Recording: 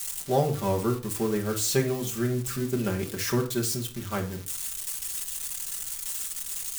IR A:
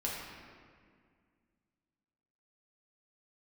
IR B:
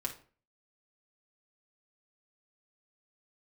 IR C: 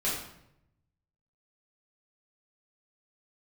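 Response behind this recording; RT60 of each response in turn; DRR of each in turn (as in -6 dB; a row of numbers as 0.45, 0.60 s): B; 2.0, 0.45, 0.80 s; -5.0, -0.5, -8.0 dB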